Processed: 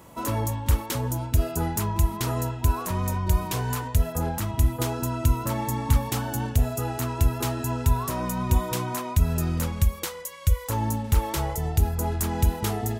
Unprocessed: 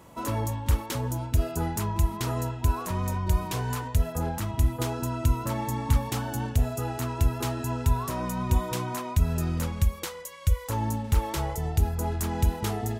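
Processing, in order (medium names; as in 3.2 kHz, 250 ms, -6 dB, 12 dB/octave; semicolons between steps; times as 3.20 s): treble shelf 11 kHz +6.5 dB; trim +2 dB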